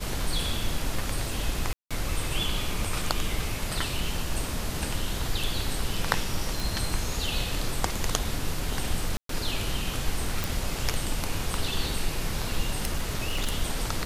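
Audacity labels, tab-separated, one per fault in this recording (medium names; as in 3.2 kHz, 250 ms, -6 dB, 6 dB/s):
1.730000	1.910000	dropout 176 ms
6.600000	6.600000	pop
9.170000	9.290000	dropout 123 ms
10.440000	10.440000	pop
12.760000	13.560000	clipped -21.5 dBFS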